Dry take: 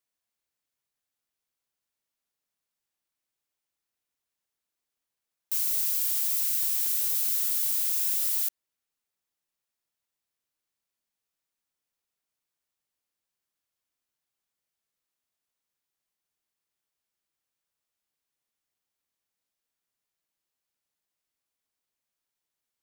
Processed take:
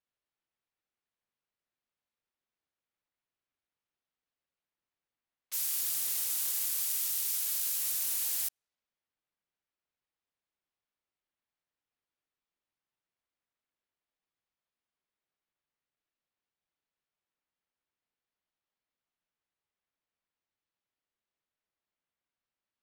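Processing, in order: level-controlled noise filter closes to 2.9 kHz, open at -27.5 dBFS; ring modulator with a swept carrier 770 Hz, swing 55%, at 0.48 Hz; trim +1.5 dB

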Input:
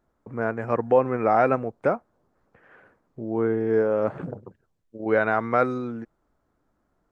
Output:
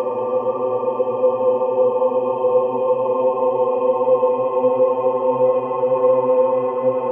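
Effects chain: expander on every frequency bin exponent 2; Paulstretch 35×, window 0.50 s, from 0.84 s; bass shelf 220 Hz -12 dB; trim +6.5 dB

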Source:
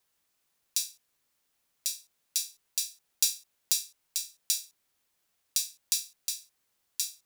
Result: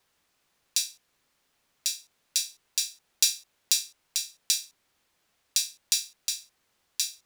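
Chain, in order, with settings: treble shelf 7.3 kHz -11.5 dB; trim +8.5 dB

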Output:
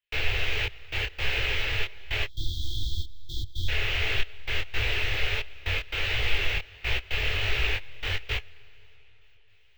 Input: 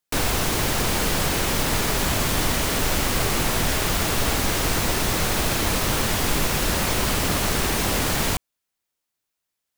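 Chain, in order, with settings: median filter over 3 samples; reverse; upward compressor, threshold -45 dBFS; reverse; treble shelf 10 kHz -7.5 dB; feedback comb 430 Hz, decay 0.19 s, harmonics all, mix 50%; trance gate "xxxxx..x." 114 bpm -24 dB; on a send at -23 dB: reverberation RT60 4.6 s, pre-delay 80 ms; on the sum: spectral selection erased 2.26–3.69 s, 360–3200 Hz; FFT filter 100 Hz 0 dB, 200 Hz -29 dB, 420 Hz -6 dB, 1.1 kHz -13 dB, 1.9 kHz +2 dB, 2.7 kHz +8 dB, 4.8 kHz -9 dB, 11 kHz -23 dB, 16 kHz 0 dB; detune thickener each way 50 cents; trim +6.5 dB

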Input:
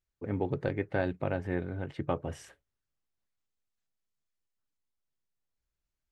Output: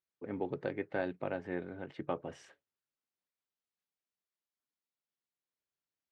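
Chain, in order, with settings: band-pass 200–5600 Hz; trim -4 dB

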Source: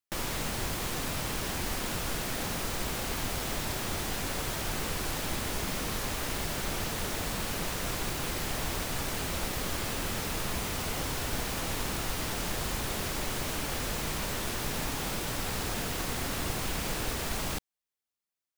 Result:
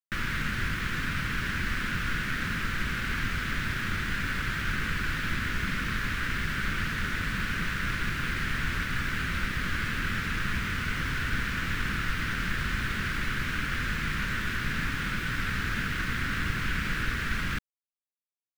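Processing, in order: FFT filter 210 Hz 0 dB, 770 Hz -21 dB, 1.5 kHz +8 dB, 14 kHz -26 dB; in parallel at -2 dB: crossover distortion -47 dBFS; on the sum: bit crusher 8-bit

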